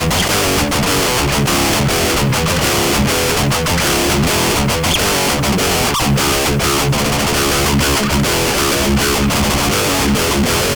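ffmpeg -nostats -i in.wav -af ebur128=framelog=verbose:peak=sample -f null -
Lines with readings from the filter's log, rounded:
Integrated loudness:
  I:         -13.6 LUFS
  Threshold: -23.6 LUFS
Loudness range:
  LRA:         0.1 LU
  Threshold: -33.6 LUFS
  LRA low:   -13.6 LUFS
  LRA high:  -13.5 LUFS
Sample peak:
  Peak:       -1.7 dBFS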